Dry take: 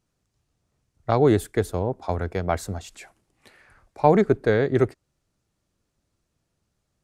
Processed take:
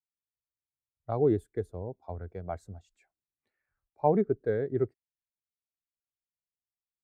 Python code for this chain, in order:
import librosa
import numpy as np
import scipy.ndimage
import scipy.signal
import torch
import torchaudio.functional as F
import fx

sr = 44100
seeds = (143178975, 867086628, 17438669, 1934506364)

y = fx.spectral_expand(x, sr, expansion=1.5)
y = F.gain(torch.from_numpy(y), -7.5).numpy()